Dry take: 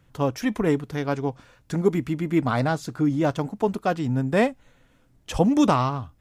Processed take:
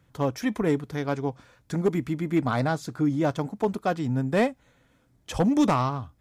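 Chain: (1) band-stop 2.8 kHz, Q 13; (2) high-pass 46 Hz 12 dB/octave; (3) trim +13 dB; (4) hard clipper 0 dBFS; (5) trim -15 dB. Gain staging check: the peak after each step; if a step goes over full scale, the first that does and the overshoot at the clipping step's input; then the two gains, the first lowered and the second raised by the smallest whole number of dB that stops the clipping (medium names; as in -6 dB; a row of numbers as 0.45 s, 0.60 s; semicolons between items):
-7.0 dBFS, -6.0 dBFS, +7.0 dBFS, 0.0 dBFS, -15.0 dBFS; step 3, 7.0 dB; step 3 +6 dB, step 5 -8 dB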